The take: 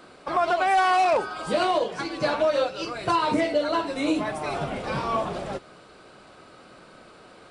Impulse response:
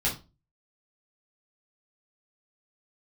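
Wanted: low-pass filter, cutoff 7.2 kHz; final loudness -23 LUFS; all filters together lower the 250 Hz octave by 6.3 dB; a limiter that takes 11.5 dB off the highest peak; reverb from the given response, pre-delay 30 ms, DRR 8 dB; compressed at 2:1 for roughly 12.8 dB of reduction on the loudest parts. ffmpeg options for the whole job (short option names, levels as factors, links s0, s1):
-filter_complex "[0:a]lowpass=7200,equalizer=f=250:t=o:g=-9,acompressor=threshold=0.00708:ratio=2,alimiter=level_in=3.55:limit=0.0631:level=0:latency=1,volume=0.282,asplit=2[s0][s1];[1:a]atrim=start_sample=2205,adelay=30[s2];[s1][s2]afir=irnorm=-1:irlink=0,volume=0.141[s3];[s0][s3]amix=inputs=2:normalize=0,volume=10.6"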